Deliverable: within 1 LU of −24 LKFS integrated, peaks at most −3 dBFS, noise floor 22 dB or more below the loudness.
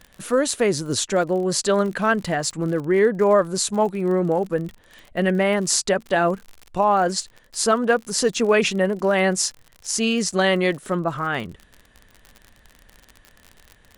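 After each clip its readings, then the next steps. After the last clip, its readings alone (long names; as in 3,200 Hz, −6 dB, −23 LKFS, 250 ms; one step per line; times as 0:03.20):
crackle rate 50 per second; integrated loudness −21.0 LKFS; sample peak −3.0 dBFS; target loudness −24.0 LKFS
→ click removal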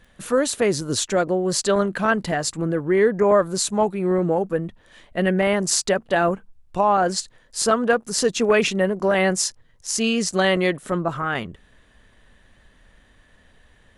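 crackle rate 0.072 per second; integrated loudness −21.0 LKFS; sample peak −3.0 dBFS; target loudness −24.0 LKFS
→ level −3 dB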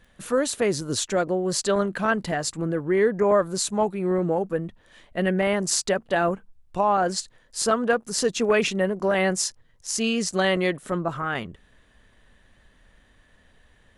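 integrated loudness −24.0 LKFS; sample peak −6.0 dBFS; background noise floor −59 dBFS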